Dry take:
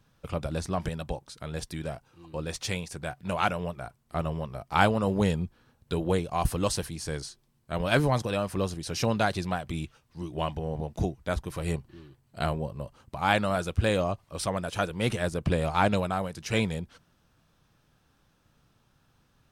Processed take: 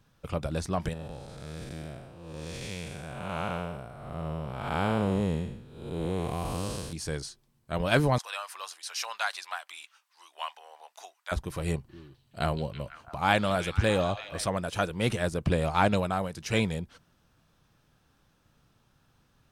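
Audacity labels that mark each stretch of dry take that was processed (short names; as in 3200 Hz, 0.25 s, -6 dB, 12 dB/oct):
0.930000	6.930000	time blur width 0.309 s
8.180000	11.320000	HPF 930 Hz 24 dB/oct
11.980000	14.500000	delay with a stepping band-pass 0.165 s, band-pass from 4500 Hz, each repeat -0.7 oct, level -5.5 dB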